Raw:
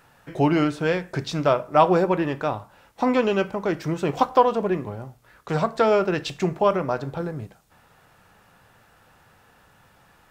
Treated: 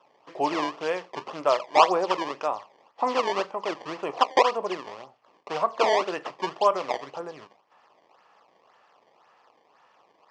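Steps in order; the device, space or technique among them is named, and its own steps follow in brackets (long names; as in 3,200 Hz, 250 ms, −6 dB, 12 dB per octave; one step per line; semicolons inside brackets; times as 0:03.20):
circuit-bent sampling toy (sample-and-hold swept by an LFO 19×, swing 160% 1.9 Hz; loudspeaker in its box 560–4,800 Hz, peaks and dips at 1,100 Hz +5 dB, 1,500 Hz −9 dB, 2,200 Hz −4 dB, 3,800 Hz −9 dB)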